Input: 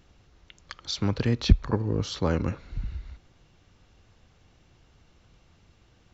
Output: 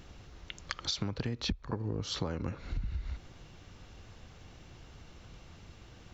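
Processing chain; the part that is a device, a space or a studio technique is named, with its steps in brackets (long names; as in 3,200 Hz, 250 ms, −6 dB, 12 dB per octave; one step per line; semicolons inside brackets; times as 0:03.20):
serial compression, leveller first (downward compressor 2 to 1, threshold −29 dBFS, peak gain reduction 11 dB; downward compressor 5 to 1, threshold −39 dBFS, peak gain reduction 18 dB)
level +7 dB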